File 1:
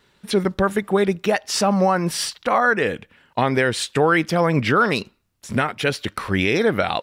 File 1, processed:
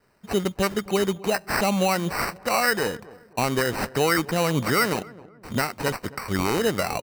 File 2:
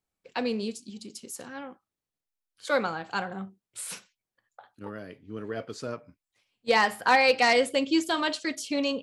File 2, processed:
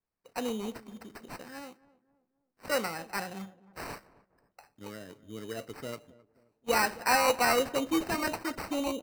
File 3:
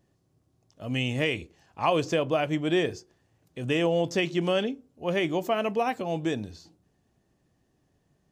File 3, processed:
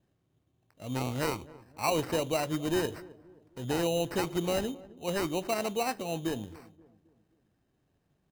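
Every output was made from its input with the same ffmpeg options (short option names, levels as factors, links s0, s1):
-filter_complex "[0:a]adynamicequalizer=threshold=0.00708:dfrequency=6300:dqfactor=1.1:tfrequency=6300:tqfactor=1.1:attack=5:release=100:ratio=0.375:range=2.5:mode=boostabove:tftype=bell,acrusher=samples=13:mix=1:aa=0.000001,asplit=2[s0][s1];[s1]adelay=265,lowpass=f=1000:p=1,volume=0.112,asplit=2[s2][s3];[s3]adelay=265,lowpass=f=1000:p=1,volume=0.45,asplit=2[s4][s5];[s5]adelay=265,lowpass=f=1000:p=1,volume=0.45,asplit=2[s6][s7];[s7]adelay=265,lowpass=f=1000:p=1,volume=0.45[s8];[s0][s2][s4][s6][s8]amix=inputs=5:normalize=0,volume=0.596"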